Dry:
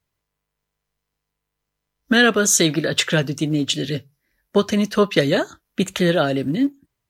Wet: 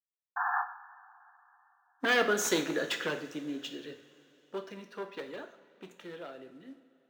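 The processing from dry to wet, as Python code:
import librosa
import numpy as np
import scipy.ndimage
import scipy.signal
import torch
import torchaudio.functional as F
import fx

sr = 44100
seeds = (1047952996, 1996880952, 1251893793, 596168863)

y = np.minimum(x, 2.0 * 10.0 ** (-11.0 / 20.0) - x)
y = fx.doppler_pass(y, sr, speed_mps=14, closest_m=7.4, pass_at_s=2.44)
y = scipy.signal.sosfilt(scipy.signal.butter(2, 380.0, 'highpass', fs=sr, output='sos'), y)
y = fx.notch(y, sr, hz=610.0, q=12.0)
y = fx.quant_companded(y, sr, bits=6)
y = fx.spec_paint(y, sr, seeds[0], shape='noise', start_s=0.36, length_s=0.26, low_hz=700.0, high_hz=1800.0, level_db=-24.0)
y = fx.high_shelf(y, sr, hz=3000.0, db=-11.0)
y = fx.rev_double_slope(y, sr, seeds[1], early_s=0.55, late_s=3.7, knee_db=-18, drr_db=5.5)
y = np.interp(np.arange(len(y)), np.arange(len(y))[::2], y[::2])
y = y * 10.0 ** (-5.5 / 20.0)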